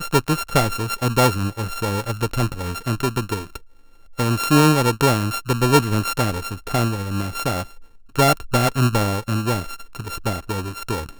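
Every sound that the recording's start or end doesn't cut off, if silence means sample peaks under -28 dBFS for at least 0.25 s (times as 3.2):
4.19–7.63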